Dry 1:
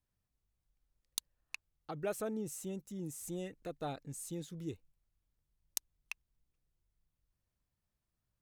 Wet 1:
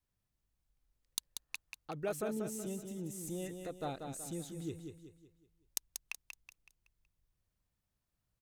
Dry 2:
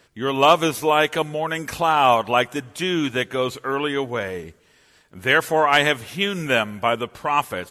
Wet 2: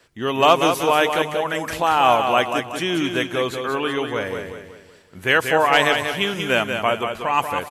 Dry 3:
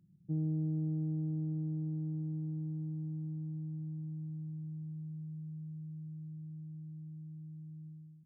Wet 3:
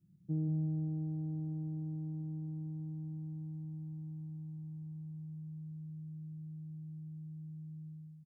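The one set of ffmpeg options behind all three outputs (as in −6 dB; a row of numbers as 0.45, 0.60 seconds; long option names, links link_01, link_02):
-filter_complex "[0:a]adynamicequalizer=threshold=0.00562:dfrequency=150:dqfactor=2.2:tfrequency=150:tqfactor=2.2:attack=5:release=100:ratio=0.375:range=2:mode=cutabove:tftype=bell,asplit=2[link_01][link_02];[link_02]aecho=0:1:187|374|561|748|935:0.473|0.194|0.0795|0.0326|0.0134[link_03];[link_01][link_03]amix=inputs=2:normalize=0"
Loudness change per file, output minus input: +0.5, +1.0, −2.0 LU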